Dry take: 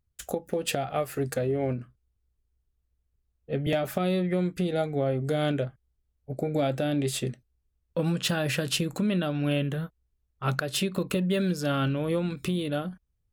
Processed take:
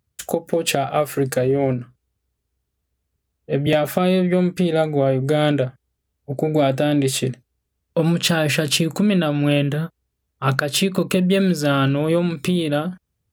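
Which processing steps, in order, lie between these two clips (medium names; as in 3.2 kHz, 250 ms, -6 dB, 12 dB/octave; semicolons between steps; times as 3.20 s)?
high-pass 100 Hz; trim +9 dB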